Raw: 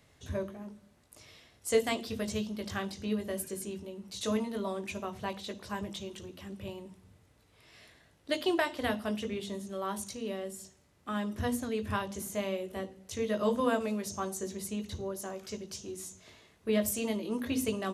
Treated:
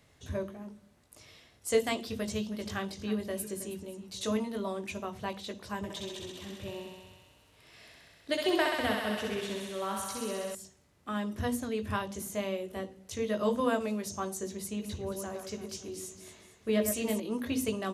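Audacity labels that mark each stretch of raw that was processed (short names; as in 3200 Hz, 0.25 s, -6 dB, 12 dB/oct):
2.190000	4.310000	echo 0.319 s -14.5 dB
5.770000	10.550000	thinning echo 65 ms, feedback 83%, high-pass 380 Hz, level -3.5 dB
14.620000	17.200000	echo with dull and thin repeats by turns 0.112 s, split 2300 Hz, feedback 62%, level -6 dB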